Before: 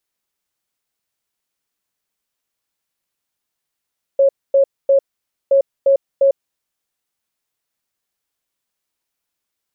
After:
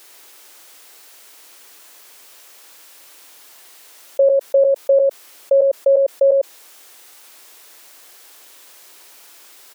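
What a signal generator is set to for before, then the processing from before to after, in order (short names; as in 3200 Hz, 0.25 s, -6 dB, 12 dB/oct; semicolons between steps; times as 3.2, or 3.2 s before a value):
beep pattern sine 549 Hz, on 0.10 s, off 0.25 s, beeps 3, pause 0.52 s, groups 2, -8.5 dBFS
HPF 310 Hz 24 dB/oct; on a send: echo 0.104 s -5 dB; on the sum: fast leveller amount 50%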